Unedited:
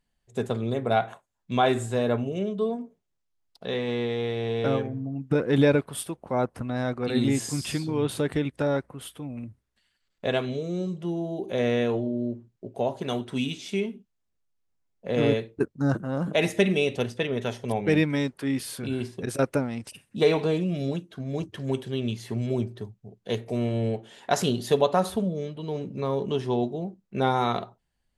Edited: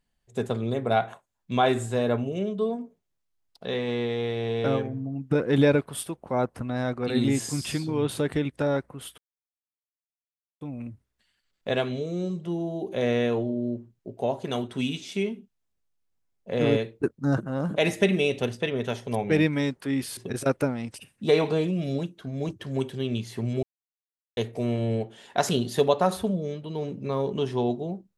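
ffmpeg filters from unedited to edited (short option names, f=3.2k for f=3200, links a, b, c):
-filter_complex "[0:a]asplit=5[a][b][c][d][e];[a]atrim=end=9.18,asetpts=PTS-STARTPTS,afade=t=out:st=9.176:d=0.004:c=hsin,apad=pad_dur=1.43[f];[b]atrim=start=9.18:end=18.742,asetpts=PTS-STARTPTS,afade=t=in:d=0.004:c=hsin[g];[c]atrim=start=19.098:end=22.56,asetpts=PTS-STARTPTS,afade=t=out:st=3.458:d=0.004:c=hsin[h];[d]atrim=start=22.56:end=23.3,asetpts=PTS-STARTPTS,volume=0[i];[e]atrim=start=23.3,asetpts=PTS-STARTPTS,afade=t=in:d=0.004:c=hsin[j];[f][g]concat=n=2:v=0:a=1[k];[h][i][j]concat=n=3:v=0:a=1[l];[k][l]acrossfade=d=0.004:c1=hsin:c2=hsin"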